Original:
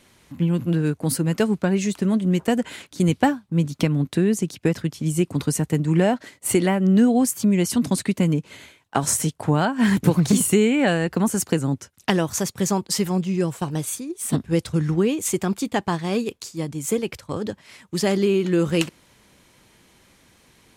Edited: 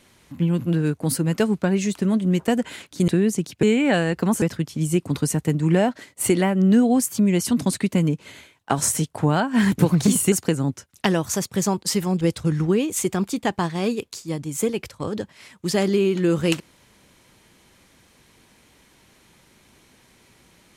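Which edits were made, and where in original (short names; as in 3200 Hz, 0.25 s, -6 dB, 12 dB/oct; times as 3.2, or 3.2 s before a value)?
3.08–4.12 cut
10.57–11.36 move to 4.67
13.25–14.5 cut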